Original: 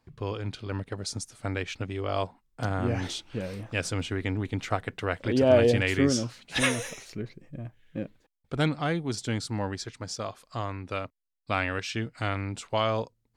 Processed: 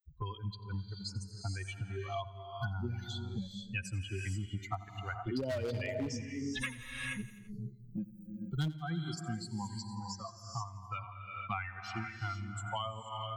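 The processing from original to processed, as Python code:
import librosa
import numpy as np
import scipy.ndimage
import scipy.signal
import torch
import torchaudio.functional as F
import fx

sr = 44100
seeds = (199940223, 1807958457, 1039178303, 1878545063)

y = fx.bin_expand(x, sr, power=3.0)
y = fx.peak_eq(y, sr, hz=130.0, db=7.5, octaves=1.6)
y = fx.rev_gated(y, sr, seeds[0], gate_ms=500, shape='rising', drr_db=8.5)
y = np.clip(10.0 ** (19.0 / 20.0) * y, -1.0, 1.0) / 10.0 ** (19.0 / 20.0)
y = fx.high_shelf(y, sr, hz=7300.0, db=10.5, at=(8.03, 10.64))
y = fx.echo_feedback(y, sr, ms=84, feedback_pct=51, wet_db=-18)
y = fx.band_squash(y, sr, depth_pct=100)
y = y * librosa.db_to_amplitude(-3.0)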